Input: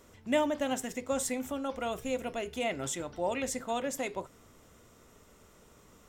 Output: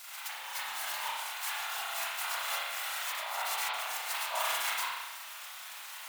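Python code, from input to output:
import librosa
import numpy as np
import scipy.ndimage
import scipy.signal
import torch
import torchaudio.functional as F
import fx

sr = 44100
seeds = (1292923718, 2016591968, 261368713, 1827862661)

p1 = fx.envelope_flatten(x, sr, power=0.1)
p2 = fx.savgol(p1, sr, points=65, at=(3.12, 3.74))
p3 = 10.0 ** (-24.5 / 20.0) * (np.abs((p2 / 10.0 ** (-24.5 / 20.0) + 3.0) % 4.0 - 2.0) - 1.0)
p4 = p3 + fx.echo_single(p3, sr, ms=616, db=-8.5, dry=0)
p5 = fx.over_compress(p4, sr, threshold_db=-43.0, ratio=-1.0)
p6 = scipy.signal.sosfilt(scipy.signal.butter(8, 760.0, 'highpass', fs=sr, output='sos'), p5)
p7 = fx.dmg_crackle(p6, sr, seeds[0], per_s=160.0, level_db=-53.0, at=(0.64, 1.16), fade=0.02)
p8 = 10.0 ** (-34.5 / 20.0) * np.tanh(p7 / 10.0 ** (-34.5 / 20.0))
p9 = p7 + (p8 * 10.0 ** (-5.0 / 20.0))
p10 = fx.whisperise(p9, sr, seeds[1])
y = fx.rev_spring(p10, sr, rt60_s=1.1, pass_ms=(32,), chirp_ms=25, drr_db=-7.5)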